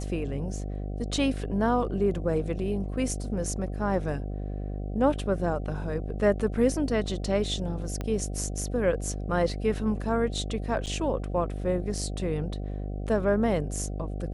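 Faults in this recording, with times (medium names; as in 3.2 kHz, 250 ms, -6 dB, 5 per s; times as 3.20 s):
buzz 50 Hz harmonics 15 -33 dBFS
8.01 s: pop -19 dBFS
10.86–10.87 s: dropout 8.5 ms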